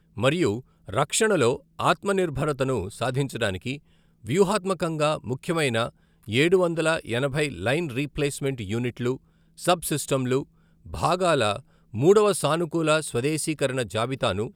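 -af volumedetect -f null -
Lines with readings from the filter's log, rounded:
mean_volume: -24.8 dB
max_volume: -6.2 dB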